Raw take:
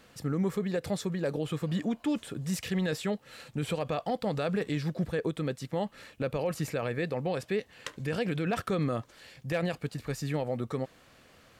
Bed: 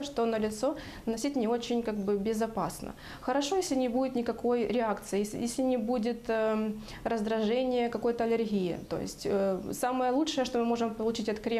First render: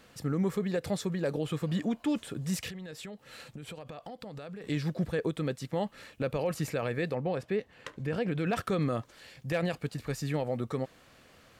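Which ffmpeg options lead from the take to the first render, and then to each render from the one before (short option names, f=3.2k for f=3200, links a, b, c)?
-filter_complex "[0:a]asettb=1/sr,asplit=3[a][b][c];[a]atrim=end=2.694[d];[b]atrim=start=2.69:end=4.64,asetpts=PTS-STARTPTS,afade=t=in:d=0.004:c=qsin,afade=t=out:st=1.946:d=0.004:c=qsin,acompressor=threshold=-39dB:ratio=16:attack=3.2:release=140:knee=1:detection=peak[e];[c]atrim=start=4.636[f];[d][e]acrossfade=d=0.004:c1=hsin:c2=qsin[g];[g][f]acrossfade=d=0.004:c1=qsin:c2=hsin,asettb=1/sr,asplit=3[h][i][j];[h]atrim=end=7.154[k];[i]atrim=start=7.15:end=8.39,asetpts=PTS-STARTPTS,afade=t=in:d=0.004:c=qsin,afade=t=out:st=1.236:d=0.004:c=qsin,highshelf=f=2.9k:g=-10.5[l];[j]atrim=start=8.386[m];[k][l]acrossfade=d=0.004:c1=hsin:c2=qsin[n];[n][m]acrossfade=d=0.004:c1=qsin:c2=hsin"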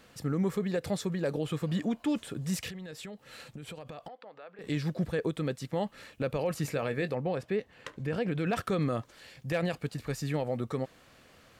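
-filter_complex "[0:a]asettb=1/sr,asplit=3[a][b][c];[a]atrim=end=4.084[d];[b]atrim=start=4.08:end=4.59,asetpts=PTS-STARTPTS,afade=t=in:d=0.004:c=qsin,afade=t=out:st=0.506:d=0.004:c=qsin,highpass=570,lowpass=2.3k[e];[c]atrim=start=4.586[f];[d][e]acrossfade=d=0.004:c1=hsin:c2=qsin[g];[g][f]acrossfade=d=0.004:c1=qsin:c2=hsin,asettb=1/sr,asplit=3[h][i][j];[h]atrim=end=6.624[k];[i]atrim=start=6.62:end=7.11,asetpts=PTS-STARTPTS,afade=t=in:d=0.004:c=qsin,afade=t=out:st=0.486:d=0.004:c=qsin,asplit=2[l][m];[m]adelay=21,volume=-12dB[n];[l][n]amix=inputs=2:normalize=0,atrim=end_sample=21609[o];[j]atrim=start=7.106[p];[k][o]acrossfade=d=0.004:c1=hsin:c2=qsin[q];[q][p]acrossfade=d=0.004:c1=qsin:c2=hsin"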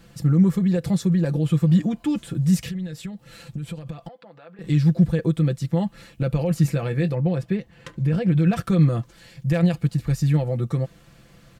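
-af "bass=f=250:g=14,treble=f=4k:g=3,aecho=1:1:5.9:0.65"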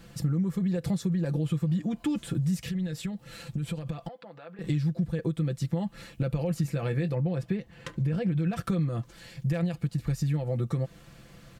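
-af "acompressor=threshold=-25dB:ratio=6"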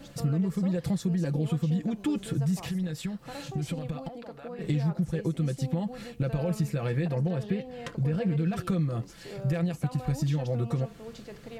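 -filter_complex "[1:a]volume=-13dB[a];[0:a][a]amix=inputs=2:normalize=0"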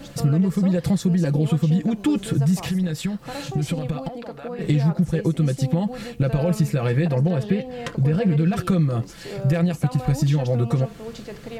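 -af "volume=8dB"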